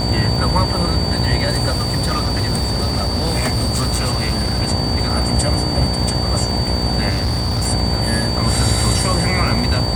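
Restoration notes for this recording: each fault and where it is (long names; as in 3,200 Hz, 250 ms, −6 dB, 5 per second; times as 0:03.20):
mains buzz 60 Hz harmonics 17 −22 dBFS
surface crackle 130 per second −24 dBFS
whistle 4,600 Hz −23 dBFS
0:01.68–0:04.60: clipping −14 dBFS
0:07.09–0:07.68: clipping −15 dBFS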